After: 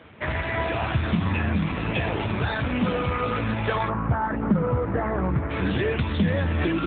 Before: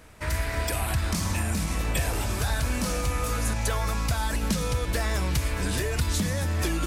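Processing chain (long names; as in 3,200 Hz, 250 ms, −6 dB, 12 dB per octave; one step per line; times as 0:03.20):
0:03.88–0:05.50: low-pass filter 1,500 Hz 24 dB per octave
level +7.5 dB
AMR narrowband 7.4 kbit/s 8,000 Hz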